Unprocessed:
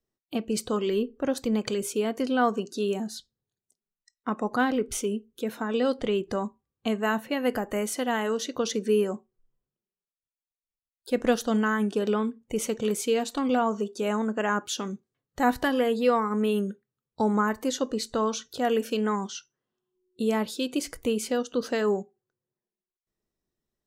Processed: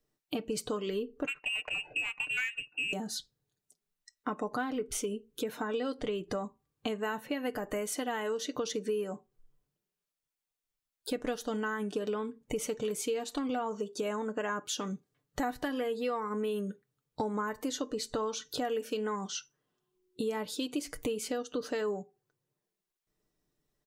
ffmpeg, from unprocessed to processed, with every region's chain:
-filter_complex "[0:a]asettb=1/sr,asplit=3[s0][s1][s2];[s0]atrim=end=1.264[s3];[s1]atrim=start=1.26:end=2.93,asetpts=PTS-STARTPTS,afade=t=in:d=0.004:c=qsin,afade=t=out:st=1.666:d=0.004:c=qsin,lowpass=f=2600:t=q:w=0.5098,lowpass=f=2600:t=q:w=0.6013,lowpass=f=2600:t=q:w=0.9,lowpass=f=2600:t=q:w=2.563,afreqshift=-3000,adynamicsmooth=sensitivity=2.5:basefreq=1600,aemphasis=mode=reproduction:type=cd[s4];[s2]atrim=start=2.926[s5];[s3][s4]acrossfade=d=0.004:c1=hsin:c2=qsin[s6];[s6][s5]acrossfade=d=0.004:c1=qsin:c2=hsin,aecho=1:1:6.7:0.45,acompressor=threshold=0.0141:ratio=4,volume=1.58"

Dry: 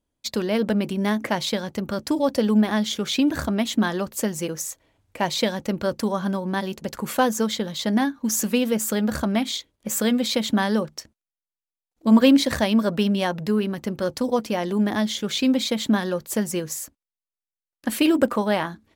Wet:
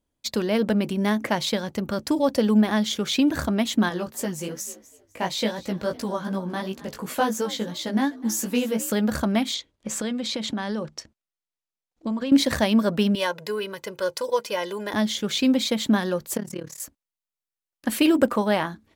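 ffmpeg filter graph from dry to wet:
-filter_complex "[0:a]asettb=1/sr,asplit=3[s0][s1][s2];[s0]atrim=end=3.894[s3];[s1]atrim=start=3.89:end=8.92,asetpts=PTS-STARTPTS,afade=t=in:d=0.004:c=qsin,afade=t=out:st=5.026:d=0.004:c=qsin,asplit=4[s4][s5][s6][s7];[s5]adelay=252,afreqshift=51,volume=0.112[s8];[s6]adelay=504,afreqshift=102,volume=0.0347[s9];[s7]adelay=756,afreqshift=153,volume=0.0108[s10];[s4][s8][s9][s10]amix=inputs=4:normalize=0,atrim=end_sample=221823,flanger=delay=15.5:depth=3.5:speed=2.8[s11];[s2]atrim=start=8.916[s12];[s3][s11]acrossfade=d=0.004:c1=hsin:c2=qsin[s13];[s13][s12]acrossfade=d=0.004:c1=qsin:c2=hsin,asettb=1/sr,asplit=3[s14][s15][s16];[s14]atrim=end=9.544[s17];[s15]atrim=start=9.54:end=12.32,asetpts=PTS-STARTPTS,afade=t=in:d=0.004:c=qsin,afade=t=out:st=2.776:d=0.004:c=qsin,lowpass=7400,acompressor=threshold=0.0631:ratio=10:attack=3.2:release=140:knee=1:detection=peak[s18];[s16]atrim=start=12.316[s19];[s17][s18]acrossfade=d=0.004:c1=hsin:c2=qsin[s20];[s20][s19]acrossfade=d=0.004:c1=qsin:c2=hsin,asettb=1/sr,asplit=3[s21][s22][s23];[s21]atrim=end=13.154[s24];[s22]atrim=start=13.15:end=14.94,asetpts=PTS-STARTPTS,afade=t=in:d=0.004:c=qsin,afade=t=out:st=1.786:d=0.004:c=qsin,highpass=f=690:p=1,aecho=1:1:2:0.75,atrim=end_sample=78939[s25];[s23]atrim=start=14.936[s26];[s24][s25]acrossfade=d=0.004:c1=hsin:c2=qsin[s27];[s27][s26]acrossfade=d=0.004:c1=qsin:c2=hsin,asettb=1/sr,asplit=3[s28][s29][s30];[s28]atrim=end=16.374[s31];[s29]atrim=start=16.37:end=16.8,asetpts=PTS-STARTPTS,afade=t=in:d=0.004:c=qsin,afade=t=out:st=0.426:d=0.004:c=qsin,highshelf=f=5700:g=-10,acompressor=threshold=0.0282:ratio=1.5:attack=3.2:release=140:knee=1:detection=peak,tremolo=f=36:d=0.919[s32];[s30]atrim=start=16.796[s33];[s31][s32]acrossfade=d=0.004:c1=hsin:c2=qsin[s34];[s34][s33]acrossfade=d=0.004:c1=qsin:c2=hsin"

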